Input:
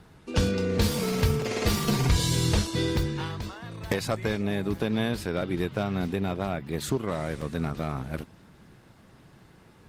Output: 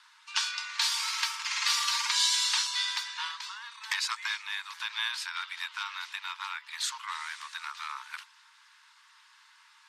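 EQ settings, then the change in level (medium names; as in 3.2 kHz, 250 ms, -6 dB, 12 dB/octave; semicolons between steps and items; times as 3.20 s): Chebyshev high-pass 900 Hz, order 8; low-pass 6.1 kHz 12 dB/octave; treble shelf 2.6 kHz +10 dB; 0.0 dB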